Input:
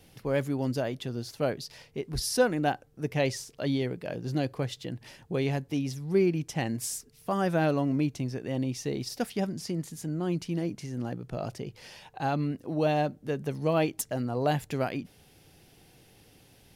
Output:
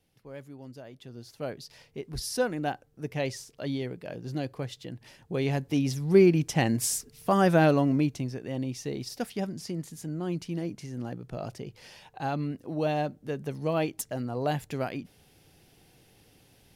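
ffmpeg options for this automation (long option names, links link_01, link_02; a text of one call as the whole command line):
ffmpeg -i in.wav -af "volume=5.5dB,afade=type=in:start_time=0.84:duration=1.01:silence=0.251189,afade=type=in:start_time=5.18:duration=0.84:silence=0.354813,afade=type=out:start_time=7.51:duration=0.87:silence=0.421697" out.wav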